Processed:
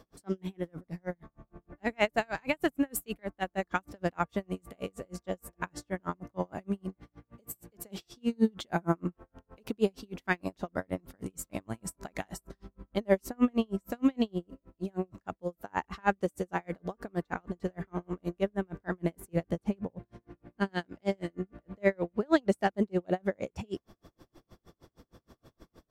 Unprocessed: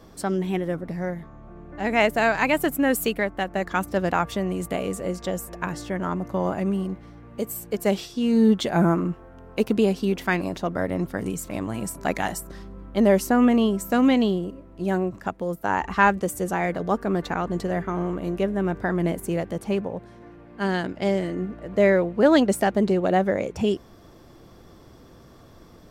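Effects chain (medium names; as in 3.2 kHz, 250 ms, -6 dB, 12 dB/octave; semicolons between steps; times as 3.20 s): 19.33–20.69 s: bass shelf 300 Hz +7 dB; logarithmic tremolo 6.4 Hz, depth 40 dB; trim -3 dB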